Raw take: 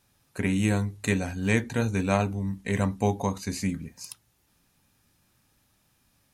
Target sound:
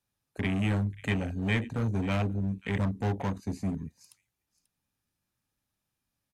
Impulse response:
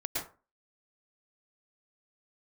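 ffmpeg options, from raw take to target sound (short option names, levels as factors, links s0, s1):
-filter_complex "[0:a]afwtdn=0.0251,acrossover=split=140|1700[s0][s1][s2];[s1]volume=33.5,asoftclip=hard,volume=0.0299[s3];[s2]aecho=1:1:538:0.141[s4];[s0][s3][s4]amix=inputs=3:normalize=0"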